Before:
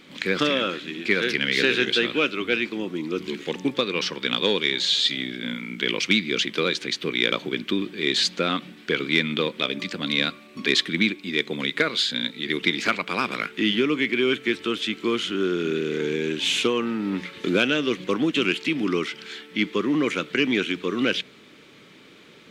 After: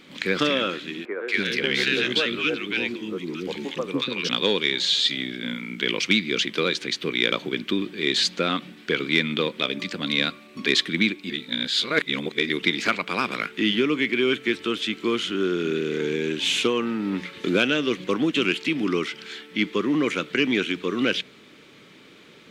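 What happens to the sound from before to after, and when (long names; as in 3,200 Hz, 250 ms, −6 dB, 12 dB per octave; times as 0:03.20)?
0:01.05–0:04.29: three-band delay without the direct sound mids, highs, lows 230/290 ms, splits 370/1,300 Hz
0:11.30–0:12.49: reverse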